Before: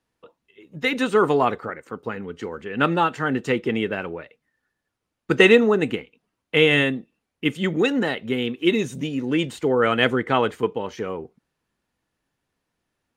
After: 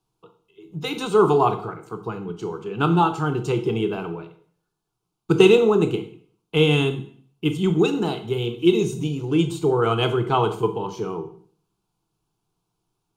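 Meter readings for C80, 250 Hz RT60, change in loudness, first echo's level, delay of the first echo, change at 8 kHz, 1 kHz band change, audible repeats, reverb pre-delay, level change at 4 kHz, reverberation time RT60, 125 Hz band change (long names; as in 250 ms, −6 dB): 15.5 dB, 0.55 s, 0.0 dB, no echo audible, no echo audible, +2.0 dB, +1.0 dB, no echo audible, 17 ms, −1.5 dB, 0.55 s, +6.5 dB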